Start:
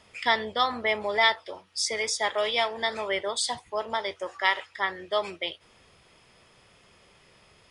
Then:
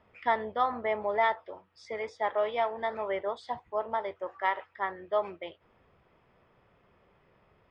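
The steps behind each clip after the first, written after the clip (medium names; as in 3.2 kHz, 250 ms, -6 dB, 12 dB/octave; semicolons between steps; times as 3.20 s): dynamic bell 760 Hz, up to +4 dB, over -33 dBFS, Q 0.89; low-pass 1.5 kHz 12 dB/octave; trim -4 dB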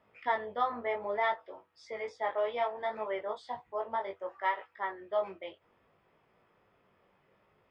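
bass shelf 95 Hz -11.5 dB; chorus 0.64 Hz, delay 18.5 ms, depth 2.7 ms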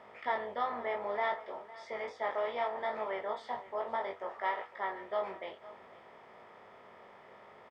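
spectral levelling over time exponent 0.6; delay 507 ms -18 dB; trim -5 dB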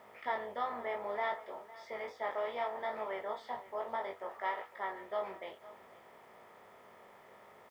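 added noise white -74 dBFS; trim -2.5 dB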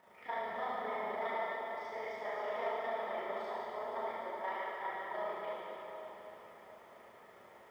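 AM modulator 27 Hz, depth 95%; plate-style reverb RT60 3.8 s, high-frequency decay 0.9×, DRR -8.5 dB; trim -5 dB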